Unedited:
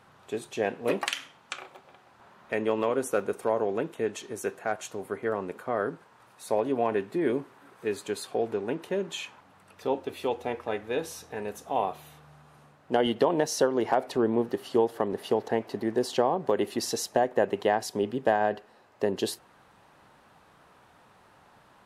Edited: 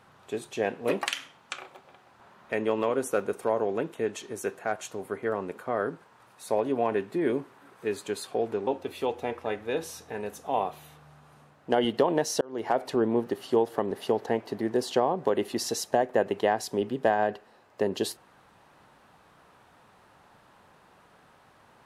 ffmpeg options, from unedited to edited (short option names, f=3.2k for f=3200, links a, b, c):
-filter_complex "[0:a]asplit=3[a][b][c];[a]atrim=end=8.672[d];[b]atrim=start=9.888:end=13.63,asetpts=PTS-STARTPTS,afade=t=out:st=3.738:d=0.004:c=hsin[e];[c]atrim=start=13.63,asetpts=PTS-STARTPTS,afade=t=in:d=0.36[f];[e][f]concat=n=2:v=0:a=1[g];[d][g]acrossfade=d=0.004:c1=hsin:c2=hsin"